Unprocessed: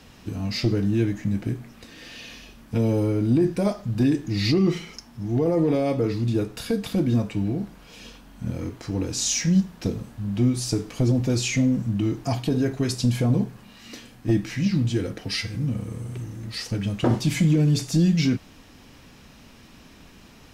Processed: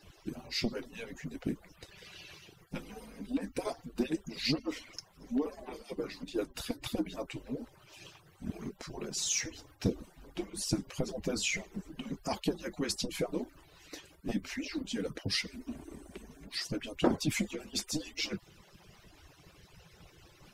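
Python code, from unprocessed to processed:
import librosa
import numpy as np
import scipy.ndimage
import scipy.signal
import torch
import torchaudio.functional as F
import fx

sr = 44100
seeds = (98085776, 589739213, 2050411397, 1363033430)

y = fx.hpss_only(x, sr, part='percussive')
y = F.gain(torch.from_numpy(y), -3.5).numpy()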